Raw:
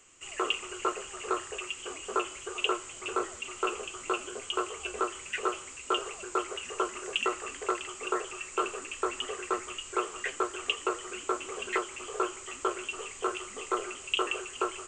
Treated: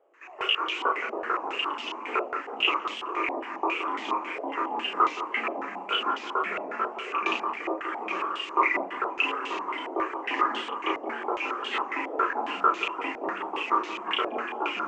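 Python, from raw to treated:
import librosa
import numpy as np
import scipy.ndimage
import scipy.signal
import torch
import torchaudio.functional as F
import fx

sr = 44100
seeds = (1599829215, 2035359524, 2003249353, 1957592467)

p1 = fx.pitch_ramps(x, sr, semitones=-1.0, every_ms=742)
p2 = scipy.signal.sosfilt(scipy.signal.cheby2(4, 40, 170.0, 'highpass', fs=sr, output='sos'), p1)
p3 = fx.wow_flutter(p2, sr, seeds[0], rate_hz=2.1, depth_cents=150.0)
p4 = fx.quant_float(p3, sr, bits=2)
p5 = p3 + (p4 * librosa.db_to_amplitude(1.5))
p6 = fx.doubler(p5, sr, ms=34.0, db=-3.5)
p7 = fx.echo_pitch(p6, sr, ms=116, semitones=-3, count=3, db_per_echo=-6.0)
p8 = p7 + fx.echo_feedback(p7, sr, ms=172, feedback_pct=43, wet_db=-8.0, dry=0)
p9 = fx.filter_held_lowpass(p8, sr, hz=7.3, low_hz=660.0, high_hz=3400.0)
y = p9 * librosa.db_to_amplitude(-8.0)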